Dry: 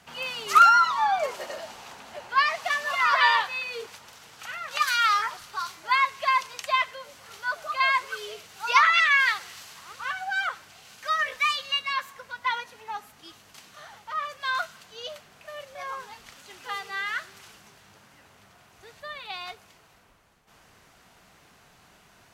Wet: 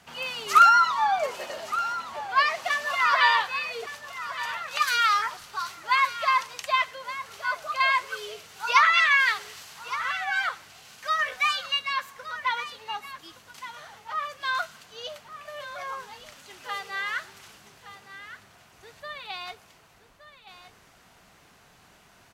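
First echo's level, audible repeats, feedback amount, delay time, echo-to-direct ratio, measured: -13.0 dB, 1, no regular repeats, 1168 ms, -13.0 dB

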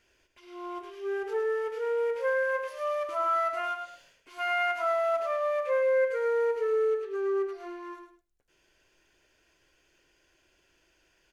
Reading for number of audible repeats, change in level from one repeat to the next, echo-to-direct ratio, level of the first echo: 2, -12.0 dB, -6.5 dB, -7.0 dB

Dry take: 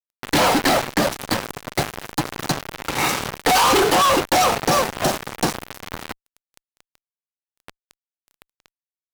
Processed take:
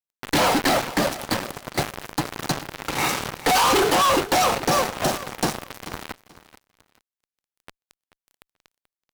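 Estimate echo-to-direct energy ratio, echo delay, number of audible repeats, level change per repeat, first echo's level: -16.5 dB, 434 ms, 2, -13.0 dB, -16.5 dB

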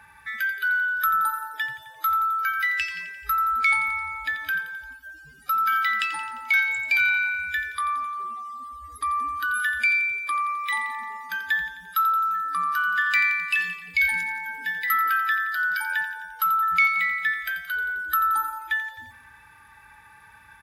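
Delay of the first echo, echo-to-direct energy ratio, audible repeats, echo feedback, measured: 87 ms, -9.5 dB, 5, 58%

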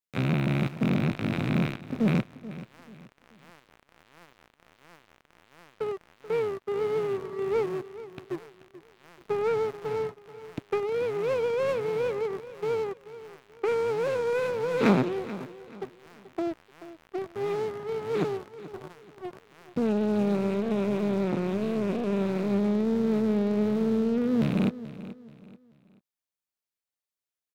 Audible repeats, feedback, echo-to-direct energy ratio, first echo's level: 3, 33%, -15.0 dB, -15.5 dB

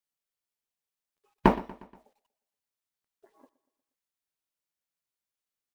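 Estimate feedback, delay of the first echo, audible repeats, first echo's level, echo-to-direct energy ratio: 53%, 119 ms, 3, -19.5 dB, -18.0 dB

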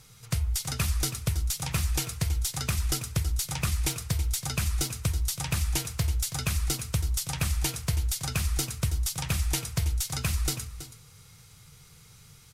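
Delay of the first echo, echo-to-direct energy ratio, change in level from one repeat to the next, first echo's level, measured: 326 ms, -13.0 dB, no regular repeats, -13.0 dB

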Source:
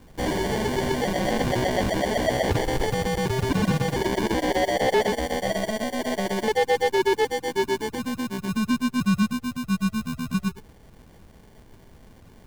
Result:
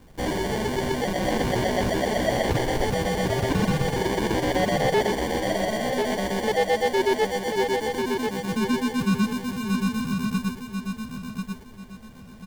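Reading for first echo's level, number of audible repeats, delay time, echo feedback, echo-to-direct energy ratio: -5.5 dB, 3, 1041 ms, 27%, -5.0 dB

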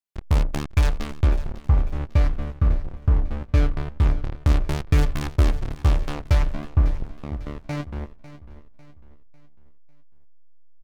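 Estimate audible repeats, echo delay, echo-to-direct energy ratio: 3, 549 ms, -14.5 dB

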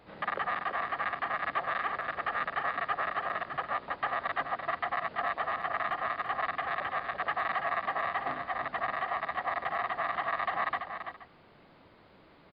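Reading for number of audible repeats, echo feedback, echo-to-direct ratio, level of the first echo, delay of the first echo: 2, no regular repeats, -7.0 dB, -7.5 dB, 335 ms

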